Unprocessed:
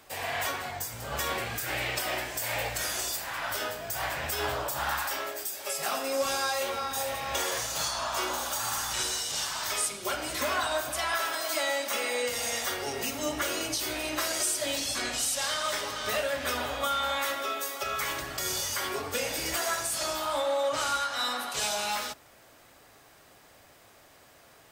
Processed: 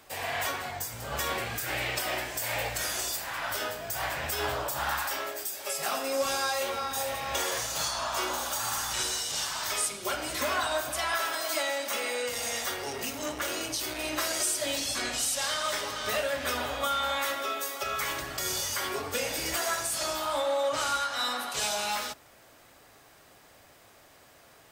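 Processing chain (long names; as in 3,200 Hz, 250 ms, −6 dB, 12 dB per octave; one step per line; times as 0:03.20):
0:11.62–0:13.99: saturating transformer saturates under 1,500 Hz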